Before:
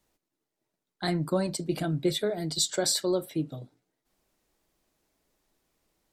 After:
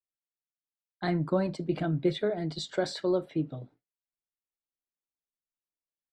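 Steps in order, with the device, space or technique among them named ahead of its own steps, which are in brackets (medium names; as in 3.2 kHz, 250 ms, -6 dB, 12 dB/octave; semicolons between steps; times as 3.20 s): hearing-loss simulation (low-pass 2.6 kHz 12 dB/octave; expander -51 dBFS)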